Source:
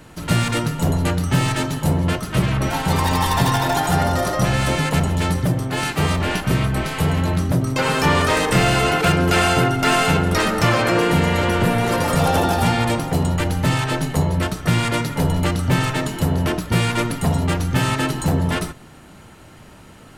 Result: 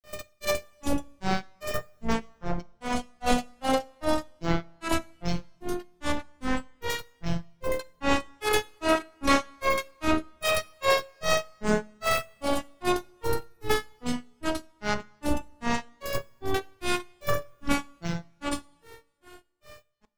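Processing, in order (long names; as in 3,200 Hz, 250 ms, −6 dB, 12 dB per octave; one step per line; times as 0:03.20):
phases set to zero 328 Hz
granular cloud 239 ms, grains 2.5 per second, pitch spread up and down by 12 semitones
coupled-rooms reverb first 0.32 s, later 1.9 s, from −20 dB, DRR 16 dB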